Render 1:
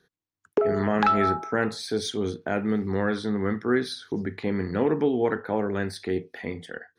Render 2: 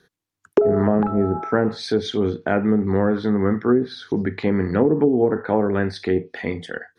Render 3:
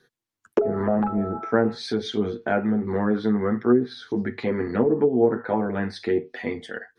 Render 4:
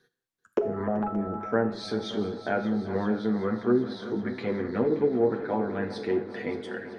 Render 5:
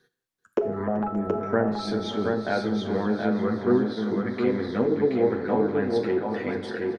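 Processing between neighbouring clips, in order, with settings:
low-pass that closes with the level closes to 460 Hz, closed at -18 dBFS; trim +7 dB
flange 1.1 Hz, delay 8 ms, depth 1.2 ms, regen -3%; peaking EQ 94 Hz -8 dB 0.48 oct
multi-head delay 192 ms, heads second and third, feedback 73%, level -15.5 dB; gated-style reverb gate 230 ms falling, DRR 10.5 dB; trim -5 dB
delay 725 ms -4 dB; trim +1.5 dB

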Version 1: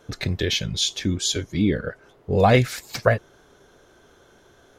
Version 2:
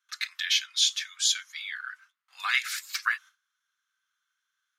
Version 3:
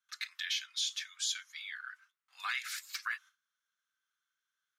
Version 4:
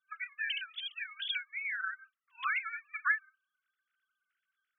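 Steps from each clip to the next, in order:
gate with hold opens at -41 dBFS; steep high-pass 1.2 kHz 48 dB/octave
peak limiter -16.5 dBFS, peak gain reduction 6.5 dB; trim -7 dB
formants replaced by sine waves; trim +2.5 dB

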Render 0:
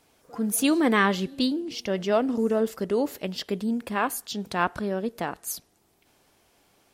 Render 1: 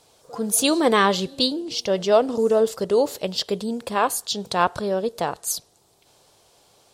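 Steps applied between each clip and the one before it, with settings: graphic EQ 125/250/500/1000/2000/4000/8000 Hz +7/-5/+8/+5/-4/+9/+8 dB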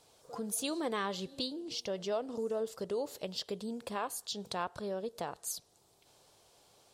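compression 2:1, threshold -33 dBFS, peak gain reduction 12 dB; trim -7 dB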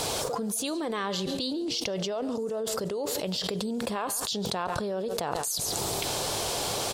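echo from a far wall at 24 m, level -21 dB; level flattener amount 100%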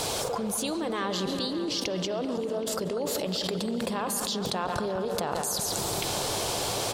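feedback echo behind a low-pass 194 ms, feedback 76%, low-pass 2.5 kHz, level -9 dB

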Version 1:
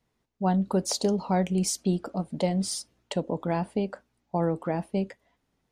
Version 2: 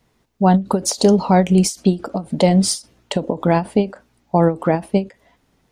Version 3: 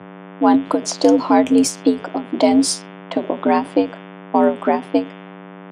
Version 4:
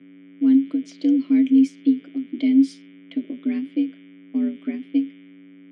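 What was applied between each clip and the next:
in parallel at -2.5 dB: peak limiter -19.5 dBFS, peak gain reduction 7.5 dB; on the sum: endings held to a fixed fall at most 230 dB/s; trim +8.5 dB
mains buzz 100 Hz, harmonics 35, -37 dBFS -4 dB/octave; level-controlled noise filter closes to 1.4 kHz, open at -11.5 dBFS; frequency shift +81 Hz
vowel filter i

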